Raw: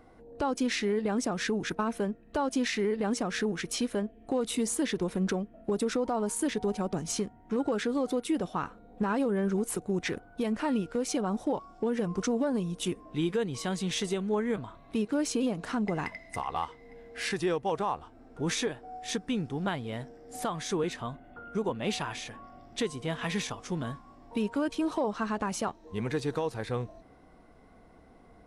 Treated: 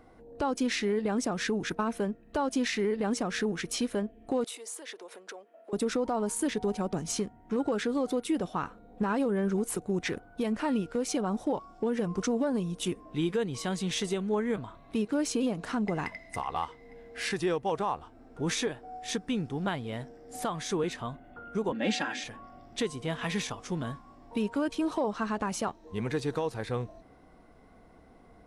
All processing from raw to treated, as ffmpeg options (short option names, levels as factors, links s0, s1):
-filter_complex "[0:a]asettb=1/sr,asplit=3[s0][s1][s2];[s0]atrim=end=4.444[s3];[s1]atrim=start=4.44:end=5.73,asetpts=PTS-STARTPTS,afade=t=in:d=0.004:c=qsin,afade=t=out:st=1.286:d=0.004:c=qsin,acompressor=threshold=0.0126:ratio=3:attack=3.2:release=140:knee=1:detection=peak,highpass=f=440:w=0.5412,highpass=f=440:w=1.3066[s4];[s2]atrim=start=5.726[s5];[s3][s4]acrossfade=d=0.004:c1=hsin:c2=qsin[s6];[s6][s5]acrossfade=d=0.004:c1=qsin:c2=hsin,asettb=1/sr,asplit=3[s7][s8][s9];[s7]atrim=end=21.724[s10];[s8]atrim=start=21.72:end=22.24,asetpts=PTS-STARTPTS,afade=t=in:d=0.004:c=qsin,afade=t=out:st=0.516:d=0.004:c=qsin,highpass=f=150:w=0.5412,highpass=f=150:w=1.3066,equalizer=f=290:t=q:w=4:g=7,equalizer=f=670:t=q:w=4:g=3,equalizer=f=1100:t=q:w=4:g=-7,equalizer=f=1700:t=q:w=4:g=8,lowpass=f=7900:w=0.5412,lowpass=f=7900:w=1.3066,aecho=1:1:3.7:0.7,atrim=end_sample=22932[s11];[s9]atrim=start=22.236[s12];[s10][s11]acrossfade=d=0.004:c1=hsin:c2=qsin[s13];[s13][s12]acrossfade=d=0.004:c1=qsin:c2=hsin"